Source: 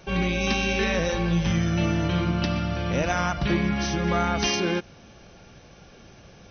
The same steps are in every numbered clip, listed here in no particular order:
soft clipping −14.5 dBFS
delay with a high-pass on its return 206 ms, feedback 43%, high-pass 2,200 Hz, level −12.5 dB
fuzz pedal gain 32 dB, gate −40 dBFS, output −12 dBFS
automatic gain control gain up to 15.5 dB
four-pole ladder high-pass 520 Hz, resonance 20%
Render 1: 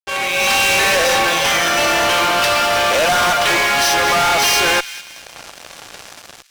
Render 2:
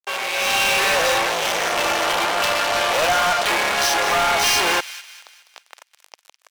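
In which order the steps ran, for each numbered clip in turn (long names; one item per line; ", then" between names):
soft clipping, then automatic gain control, then four-pole ladder high-pass, then fuzz pedal, then delay with a high-pass on its return
fuzz pedal, then automatic gain control, then four-pole ladder high-pass, then soft clipping, then delay with a high-pass on its return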